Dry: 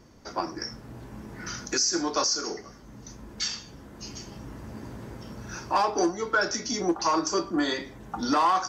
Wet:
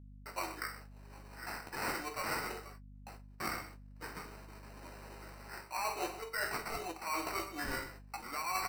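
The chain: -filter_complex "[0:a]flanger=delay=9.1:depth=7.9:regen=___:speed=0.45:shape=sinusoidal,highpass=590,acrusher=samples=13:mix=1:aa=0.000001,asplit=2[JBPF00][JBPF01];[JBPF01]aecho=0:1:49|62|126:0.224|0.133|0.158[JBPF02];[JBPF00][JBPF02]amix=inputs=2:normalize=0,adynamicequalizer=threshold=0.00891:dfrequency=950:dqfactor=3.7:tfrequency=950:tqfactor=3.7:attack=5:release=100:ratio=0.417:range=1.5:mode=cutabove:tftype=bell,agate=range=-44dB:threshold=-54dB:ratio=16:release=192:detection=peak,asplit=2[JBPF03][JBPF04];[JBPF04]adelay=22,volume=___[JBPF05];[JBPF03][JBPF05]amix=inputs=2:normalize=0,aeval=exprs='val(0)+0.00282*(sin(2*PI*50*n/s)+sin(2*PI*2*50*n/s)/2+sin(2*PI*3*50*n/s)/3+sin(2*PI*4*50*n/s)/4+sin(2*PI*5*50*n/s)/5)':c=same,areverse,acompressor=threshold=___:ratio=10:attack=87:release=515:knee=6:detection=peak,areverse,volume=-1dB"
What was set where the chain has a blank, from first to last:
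4, -12.5dB, -36dB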